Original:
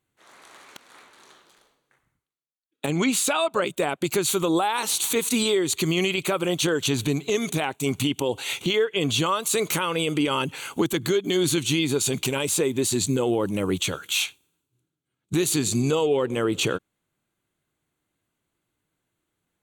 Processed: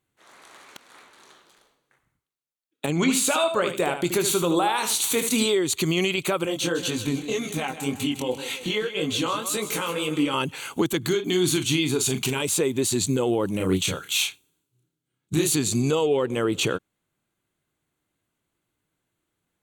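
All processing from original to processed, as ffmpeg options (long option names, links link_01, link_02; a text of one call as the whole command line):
ffmpeg -i in.wav -filter_complex "[0:a]asettb=1/sr,asplit=3[link_01][link_02][link_03];[link_01]atrim=end=2.954[link_04];[link_02]atrim=start=2.95:end=5.46,asetpts=PTS-STARTPTS,afade=type=in:duration=0.004:curve=qsin,afade=type=out:start_time=2.506:duration=0.004:curve=qsin,asplit=2[link_05][link_06];[link_06]adelay=23,volume=-12dB[link_07];[link_05][link_07]amix=inputs=2:normalize=0,atrim=end_sample=110691,aecho=1:1:76|152|228:0.376|0.0677|0.0122,atrim=end_sample=110691[link_08];[link_03]atrim=start=5.456[link_09];[link_04][link_08]acrossfade=duration=0.004:curve1=hsin:curve2=qsin[link_10];[link_10][link_09]acrossfade=duration=0.004:curve1=qsin:curve2=hsin,asettb=1/sr,asplit=3[link_11][link_12][link_13];[link_11]atrim=end=6.454[link_14];[link_12]atrim=start=6.45:end=10.34,asetpts=PTS-STARTPTS,afade=type=in:duration=0.004:curve=qsin,afade=type=out:start_time=3.886:duration=0.004:curve=qsin,aecho=1:1:3.8:0.32,atrim=end_sample=171549,aecho=1:1:157|314|471|628|785:0.266|0.122|0.0563|0.0259|0.0119,atrim=end_sample=171549,flanger=delay=19:depth=4.8:speed=1.9[link_15];[link_13]atrim=start=10.336[link_16];[link_14][link_15]acrossfade=duration=0.004:curve1=hsin:curve2=qsin[link_17];[link_17][link_16]acrossfade=duration=0.004:curve1=qsin:curve2=hsin,asettb=1/sr,asplit=3[link_18][link_19][link_20];[link_18]atrim=end=11.074[link_21];[link_19]atrim=start=11.07:end=12.42,asetpts=PTS-STARTPTS,afade=type=in:duration=0.004:curve=qsin,afade=type=out:start_time=1.346:duration=0.004:curve=qsin,equalizer=frequency=540:width_type=o:width=0.22:gain=-13.5,asplit=2[link_22][link_23];[link_23]adelay=39,volume=-9dB[link_24];[link_22][link_24]amix=inputs=2:normalize=0,atrim=end_sample=59535[link_25];[link_20]atrim=start=12.416[link_26];[link_21][link_25]acrossfade=duration=0.004:curve1=hsin:curve2=qsin[link_27];[link_27][link_26]acrossfade=duration=0.004:curve1=qsin:curve2=hsin,asettb=1/sr,asplit=3[link_28][link_29][link_30];[link_28]atrim=end=13.574[link_31];[link_29]atrim=start=13.57:end=15.55,asetpts=PTS-STARTPTS,afade=type=in:duration=0.004:curve=qsin,afade=type=out:start_time=1.976:duration=0.004:curve=qsin,equalizer=frequency=1000:width_type=o:width=2.8:gain=-3,asplit=2[link_32][link_33];[link_33]adelay=32,volume=-2.5dB[link_34];[link_32][link_34]amix=inputs=2:normalize=0,atrim=end_sample=87318[link_35];[link_30]atrim=start=15.546[link_36];[link_31][link_35]acrossfade=duration=0.004:curve1=hsin:curve2=qsin[link_37];[link_37][link_36]acrossfade=duration=0.004:curve1=qsin:curve2=hsin" out.wav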